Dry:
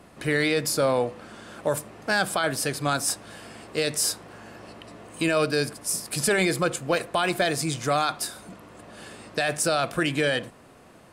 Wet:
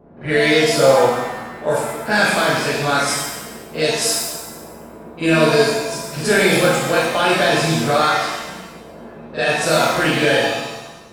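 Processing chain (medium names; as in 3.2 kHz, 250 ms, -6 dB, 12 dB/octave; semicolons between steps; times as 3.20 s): level-controlled noise filter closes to 620 Hz, open at -19.5 dBFS; pre-echo 43 ms -13 dB; pitch-shifted reverb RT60 1.1 s, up +7 st, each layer -8 dB, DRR -6.5 dB; trim +1 dB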